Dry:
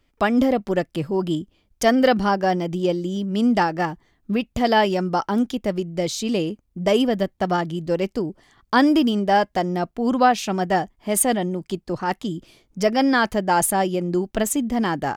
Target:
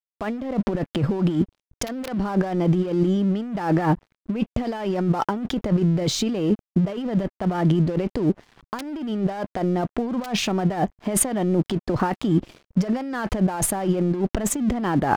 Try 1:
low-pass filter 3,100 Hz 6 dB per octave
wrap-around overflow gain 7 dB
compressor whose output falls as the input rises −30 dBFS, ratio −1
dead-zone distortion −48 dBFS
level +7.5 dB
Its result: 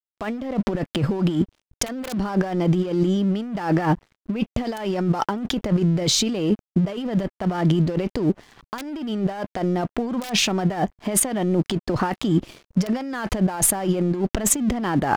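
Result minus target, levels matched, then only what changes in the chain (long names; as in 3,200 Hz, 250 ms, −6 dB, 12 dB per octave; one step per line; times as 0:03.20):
4,000 Hz band +5.0 dB
change: low-pass filter 1,400 Hz 6 dB per octave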